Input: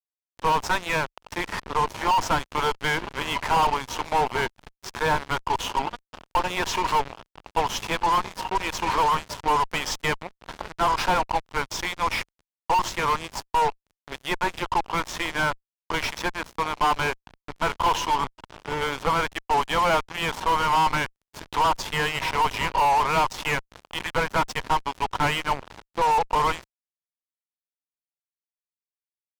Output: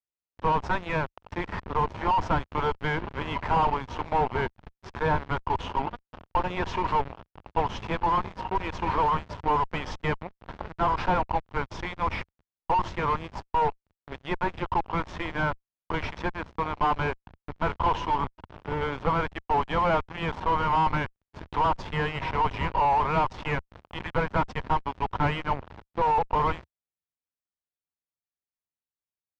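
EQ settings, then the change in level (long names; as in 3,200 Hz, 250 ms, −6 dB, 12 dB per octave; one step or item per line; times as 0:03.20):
head-to-tape spacing loss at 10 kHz 31 dB
parametric band 75 Hz +7 dB 1.2 octaves
parametric band 180 Hz +2 dB 0.77 octaves
0.0 dB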